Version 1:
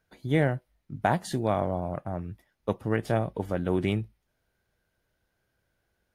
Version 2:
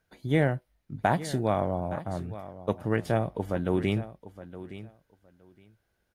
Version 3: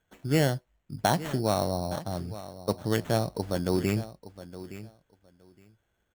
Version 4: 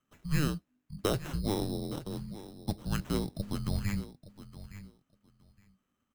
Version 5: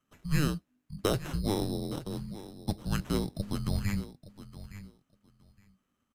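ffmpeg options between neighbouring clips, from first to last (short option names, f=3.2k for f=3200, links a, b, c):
-af "aecho=1:1:866|1732:0.178|0.0285"
-af "acrusher=samples=9:mix=1:aa=0.000001"
-af "afreqshift=-300,volume=-5dB"
-af "aresample=32000,aresample=44100,volume=1.5dB"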